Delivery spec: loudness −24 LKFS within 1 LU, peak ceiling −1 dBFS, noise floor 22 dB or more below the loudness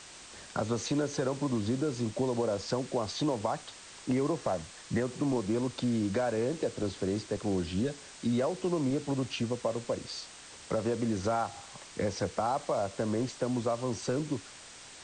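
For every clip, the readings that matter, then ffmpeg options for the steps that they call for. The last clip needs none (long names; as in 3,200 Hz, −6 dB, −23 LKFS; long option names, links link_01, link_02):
background noise floor −50 dBFS; target noise floor −55 dBFS; integrated loudness −32.5 LKFS; sample peak −17.5 dBFS; target loudness −24.0 LKFS
→ -af "afftdn=noise_reduction=6:noise_floor=-50"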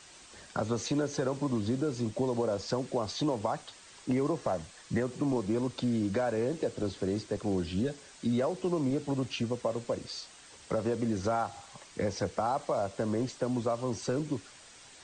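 background noise floor −54 dBFS; target noise floor −55 dBFS
→ -af "afftdn=noise_reduction=6:noise_floor=-54"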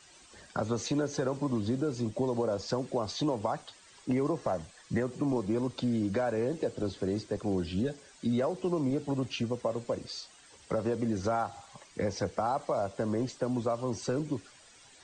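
background noise floor −57 dBFS; integrated loudness −32.5 LKFS; sample peak −17.5 dBFS; target loudness −24.0 LKFS
→ -af "volume=8.5dB"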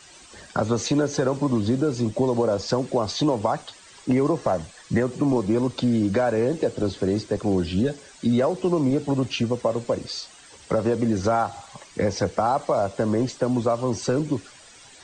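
integrated loudness −24.0 LKFS; sample peak −9.0 dBFS; background noise floor −49 dBFS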